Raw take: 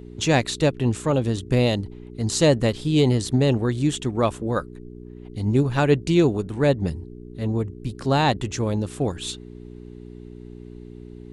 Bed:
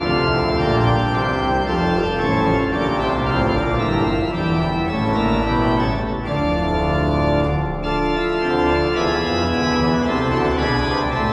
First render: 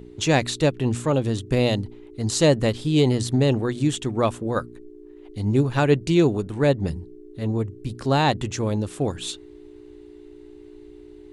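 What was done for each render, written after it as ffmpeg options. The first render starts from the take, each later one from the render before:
-af "bandreject=f=60:t=h:w=4,bandreject=f=120:t=h:w=4,bandreject=f=180:t=h:w=4,bandreject=f=240:t=h:w=4"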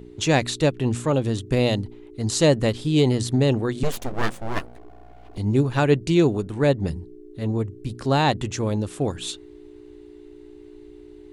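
-filter_complex "[0:a]asettb=1/sr,asplit=3[a][b][c];[a]atrim=end=3.834[d];[b]atrim=start=3.83:end=5.38,asetpts=PTS-STARTPTS,afade=t=in:d=0.004:c=qsin,afade=t=out:st=1.546:d=0.004:c=qsin,aeval=exprs='abs(val(0))':c=same[e];[c]atrim=start=5.376[f];[d][e]acrossfade=d=0.004:c1=hsin:c2=qsin[g];[g][f]acrossfade=d=0.004:c1=qsin:c2=hsin"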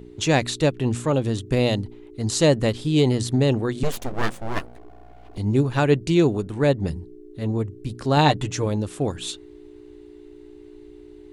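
-filter_complex "[0:a]asettb=1/sr,asplit=3[a][b][c];[a]atrim=end=8.164[d];[b]atrim=start=8.16:end=8.66,asetpts=PTS-STARTPTS,afade=t=in:d=0.004:c=qsin,afade=t=out:st=0.496:d=0.004:c=qsin,aecho=1:1:6.7:0.65,atrim=end_sample=22050[e];[c]atrim=start=8.656[f];[d][e]acrossfade=d=0.004:c1=hsin:c2=qsin[g];[g][f]acrossfade=d=0.004:c1=qsin:c2=hsin"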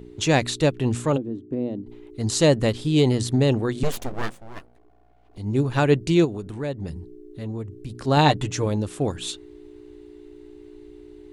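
-filter_complex "[0:a]asplit=3[a][b][c];[a]afade=t=out:st=1.16:d=0.02[d];[b]bandpass=f=290:t=q:w=2.5,afade=t=in:st=1.16:d=0.02,afade=t=out:st=1.86:d=0.02[e];[c]afade=t=in:st=1.86:d=0.02[f];[d][e][f]amix=inputs=3:normalize=0,asplit=3[g][h][i];[g]afade=t=out:st=6.24:d=0.02[j];[h]acompressor=threshold=-32dB:ratio=2:attack=3.2:release=140:knee=1:detection=peak,afade=t=in:st=6.24:d=0.02,afade=t=out:st=8.06:d=0.02[k];[i]afade=t=in:st=8.06:d=0.02[l];[j][k][l]amix=inputs=3:normalize=0,asplit=3[m][n][o];[m]atrim=end=4.45,asetpts=PTS-STARTPTS,afade=t=out:st=4.01:d=0.44:silence=0.237137[p];[n]atrim=start=4.45:end=5.28,asetpts=PTS-STARTPTS,volume=-12.5dB[q];[o]atrim=start=5.28,asetpts=PTS-STARTPTS,afade=t=in:d=0.44:silence=0.237137[r];[p][q][r]concat=n=3:v=0:a=1"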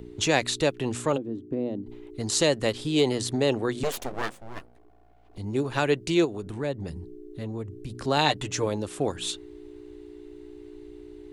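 -filter_complex "[0:a]acrossover=split=300|1600[a][b][c];[a]acompressor=threshold=-33dB:ratio=6[d];[b]alimiter=limit=-14.5dB:level=0:latency=1:release=314[e];[d][e][c]amix=inputs=3:normalize=0"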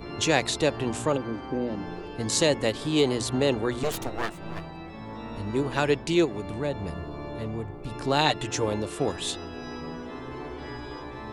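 -filter_complex "[1:a]volume=-20dB[a];[0:a][a]amix=inputs=2:normalize=0"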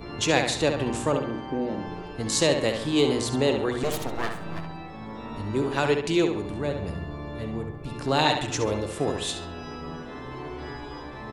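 -filter_complex "[0:a]asplit=2[a][b];[b]adelay=68,lowpass=f=4.5k:p=1,volume=-6dB,asplit=2[c][d];[d]adelay=68,lowpass=f=4.5k:p=1,volume=0.45,asplit=2[e][f];[f]adelay=68,lowpass=f=4.5k:p=1,volume=0.45,asplit=2[g][h];[h]adelay=68,lowpass=f=4.5k:p=1,volume=0.45,asplit=2[i][j];[j]adelay=68,lowpass=f=4.5k:p=1,volume=0.45[k];[a][c][e][g][i][k]amix=inputs=6:normalize=0"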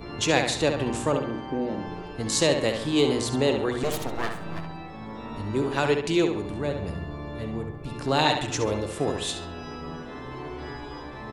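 -af anull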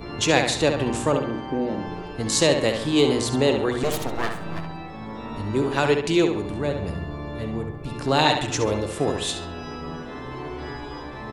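-af "volume=3dB"

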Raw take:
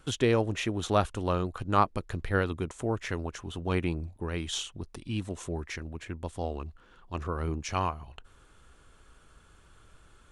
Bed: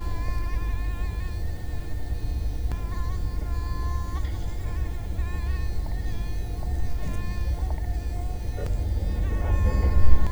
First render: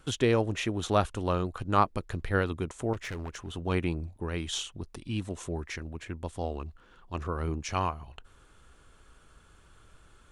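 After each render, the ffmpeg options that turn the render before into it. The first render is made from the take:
-filter_complex "[0:a]asettb=1/sr,asplit=3[a][b][c];[a]atrim=end=2.934[d];[b]atrim=start=2.93:end=3.56,asetpts=PTS-STARTPTS,afade=t=in:d=0.004:c=qsin,afade=t=out:st=0.626:d=0.004:c=qsin,volume=33dB,asoftclip=hard,volume=-33dB[e];[c]atrim=start=3.556[f];[d][e]acrossfade=d=0.004:c1=hsin:c2=qsin[g];[g][f]acrossfade=d=0.004:c1=qsin:c2=hsin"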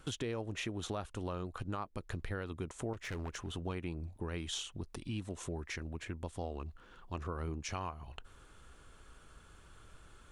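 -af "alimiter=limit=-19.5dB:level=0:latency=1:release=308,acompressor=threshold=-39dB:ratio=2.5"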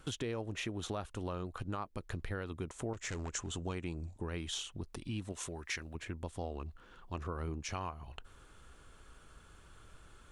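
-filter_complex "[0:a]asettb=1/sr,asplit=3[a][b][c];[a]atrim=end=2.944[d];[b]atrim=start=2.94:end=4.22,asetpts=PTS-STARTPTS,afade=t=in:d=0.004:c=qsin,afade=t=out:st=1.276:d=0.004:c=qsin,lowpass=f=7.4k:t=q:w=5.4[e];[c]atrim=start=4.216[f];[d][e]acrossfade=d=0.004:c1=hsin:c2=qsin[g];[g][f]acrossfade=d=0.004:c1=qsin:c2=hsin,asettb=1/sr,asplit=3[h][i][j];[h]atrim=end=5.324[k];[i]atrim=start=5.32:end=5.95,asetpts=PTS-STARTPTS,afade=t=in:d=0.004:c=qsin,afade=t=out:st=0.626:d=0.004:c=qsin,tiltshelf=f=850:g=-5.5[l];[j]atrim=start=5.946[m];[k][l]acrossfade=d=0.004:c1=hsin:c2=qsin[n];[n][m]acrossfade=d=0.004:c1=qsin:c2=hsin"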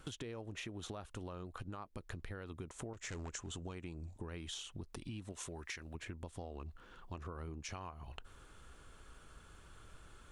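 -af "acompressor=threshold=-42dB:ratio=6"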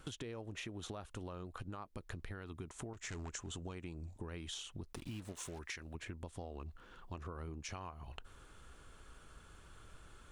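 -filter_complex "[0:a]asettb=1/sr,asplit=3[a][b][c];[a]atrim=end=2.314[d];[b]atrim=start=2.31:end=3.35,asetpts=PTS-STARTPTS,afade=t=in:d=0.004:c=qsin,afade=t=out:st=1.036:d=0.004:c=qsin,equalizer=f=520:w=7.8:g=-12[e];[c]atrim=start=3.346[f];[d][e]acrossfade=d=0.004:c1=hsin:c2=qsin[g];[g][f]acrossfade=d=0.004:c1=qsin:c2=hsin,asettb=1/sr,asplit=3[h][i][j];[h]atrim=end=4.934[k];[i]atrim=start=4.93:end=5.59,asetpts=PTS-STARTPTS,afade=t=in:d=0.004:c=qsin,afade=t=out:st=0.656:d=0.004:c=qsin,acrusher=bits=8:mix=0:aa=0.5[l];[j]atrim=start=5.586[m];[k][l]acrossfade=d=0.004:c1=hsin:c2=qsin[n];[n][m]acrossfade=d=0.004:c1=qsin:c2=hsin"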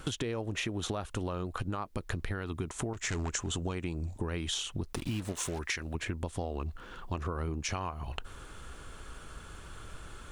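-af "volume=11dB"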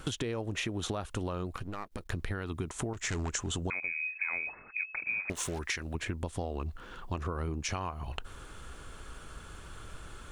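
-filter_complex "[0:a]asettb=1/sr,asplit=3[a][b][c];[a]atrim=end=1.544[d];[b]atrim=start=1.54:end=2.12,asetpts=PTS-STARTPTS,afade=t=in:d=0.004:c=qsin,afade=t=out:st=0.576:d=0.004:c=qsin,aeval=exprs='if(lt(val(0),0),0.251*val(0),val(0))':c=same[e];[c]atrim=start=2.116[f];[d][e]acrossfade=d=0.004:c1=hsin:c2=qsin[g];[g][f]acrossfade=d=0.004:c1=qsin:c2=hsin,asettb=1/sr,asplit=3[h][i][j];[h]atrim=end=3.704[k];[i]atrim=start=3.7:end=5.3,asetpts=PTS-STARTPTS,afade=t=in:d=0.004:c=qsin,afade=t=out:st=1.596:d=0.004:c=qsin,lowpass=f=2.2k:t=q:w=0.5098,lowpass=f=2.2k:t=q:w=0.6013,lowpass=f=2.2k:t=q:w=0.9,lowpass=f=2.2k:t=q:w=2.563,afreqshift=-2600[l];[j]atrim=start=5.296[m];[k][l]acrossfade=d=0.004:c1=hsin:c2=qsin[n];[n][m]acrossfade=d=0.004:c1=qsin:c2=hsin"

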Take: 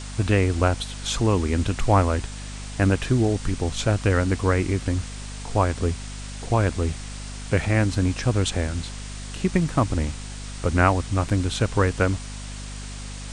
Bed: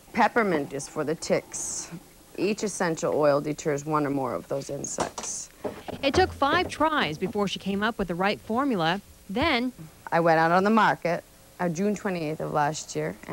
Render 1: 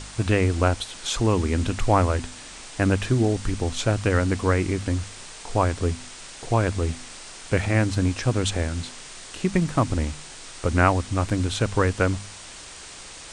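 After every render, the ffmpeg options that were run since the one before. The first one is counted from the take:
-af "bandreject=f=50:t=h:w=4,bandreject=f=100:t=h:w=4,bandreject=f=150:t=h:w=4,bandreject=f=200:t=h:w=4,bandreject=f=250:t=h:w=4"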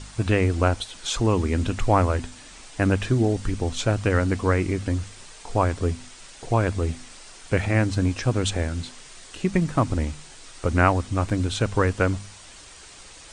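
-af "afftdn=nr=6:nf=-41"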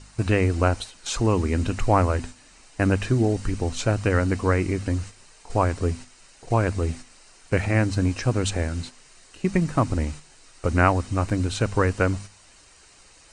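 -af "agate=range=-7dB:threshold=-35dB:ratio=16:detection=peak,bandreject=f=3.4k:w=7.8"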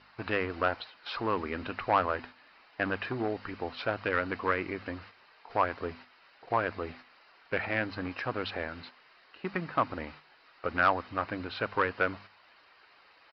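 -af "aresample=11025,volume=14.5dB,asoftclip=hard,volume=-14.5dB,aresample=44100,bandpass=f=1.3k:t=q:w=0.81:csg=0"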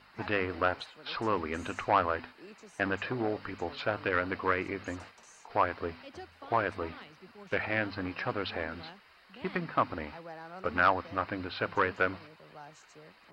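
-filter_complex "[1:a]volume=-25dB[a];[0:a][a]amix=inputs=2:normalize=0"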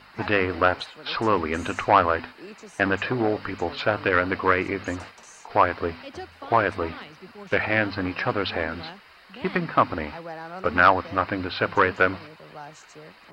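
-af "volume=8.5dB"

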